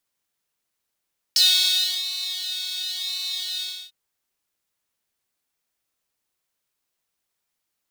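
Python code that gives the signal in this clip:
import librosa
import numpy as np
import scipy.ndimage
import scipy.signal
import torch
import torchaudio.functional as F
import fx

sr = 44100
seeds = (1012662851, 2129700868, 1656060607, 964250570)

y = fx.sub_patch_pwm(sr, seeds[0], note=66, wave2='saw', interval_st=0, detune_cents=16, level2_db=-9.0, sub_db=-16.5, noise_db=-12.5, kind='highpass', cutoff_hz=3700.0, q=8.6, env_oct=0.5, env_decay_s=0.06, env_sustain_pct=10, attack_ms=1.3, decay_s=0.67, sustain_db=-13.5, release_s=0.29, note_s=2.26, lfo_hz=0.95, width_pct=30, width_swing_pct=8)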